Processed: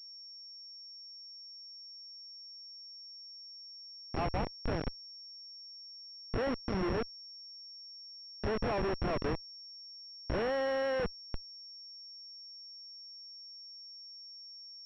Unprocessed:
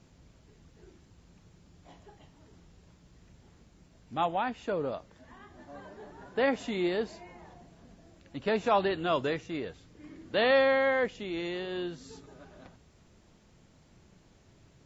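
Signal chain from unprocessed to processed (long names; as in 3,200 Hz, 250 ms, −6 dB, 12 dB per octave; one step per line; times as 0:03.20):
peak hold with a rise ahead of every peak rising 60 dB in 0.35 s
comparator with hysteresis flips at −26.5 dBFS
switching amplifier with a slow clock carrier 5,500 Hz
level +2 dB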